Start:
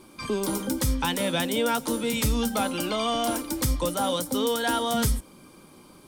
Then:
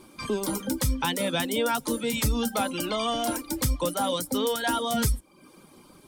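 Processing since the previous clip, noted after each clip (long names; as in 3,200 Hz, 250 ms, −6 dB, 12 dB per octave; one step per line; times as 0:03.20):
reverb reduction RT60 0.61 s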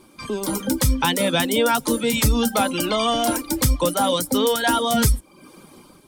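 automatic gain control gain up to 7 dB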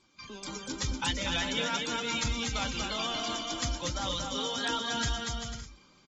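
guitar amp tone stack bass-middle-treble 5-5-5
bouncing-ball delay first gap 240 ms, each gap 0.65×, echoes 5
level −1.5 dB
AAC 24 kbit/s 48,000 Hz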